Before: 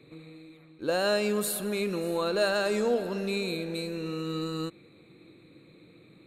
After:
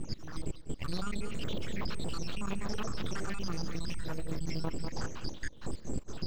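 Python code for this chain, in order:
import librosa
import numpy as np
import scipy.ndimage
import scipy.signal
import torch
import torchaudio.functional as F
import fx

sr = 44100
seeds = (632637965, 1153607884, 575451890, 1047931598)

p1 = fx.spec_dropout(x, sr, seeds[0], share_pct=84)
p2 = scipy.signal.sosfilt(scipy.signal.butter(6, 3000.0, 'highpass', fs=sr, output='sos'), p1)
p3 = fx.rider(p2, sr, range_db=4, speed_s=0.5)
p4 = p2 + F.gain(torch.from_numpy(p3), 2.0).numpy()
p5 = np.abs(p4)
p6 = fx.air_absorb(p5, sr, metres=170.0)
p7 = p6 + fx.echo_feedback(p6, sr, ms=197, feedback_pct=28, wet_db=-20.0, dry=0)
p8 = fx.env_flatten(p7, sr, amount_pct=100)
y = F.gain(torch.from_numpy(p8), 1.5).numpy()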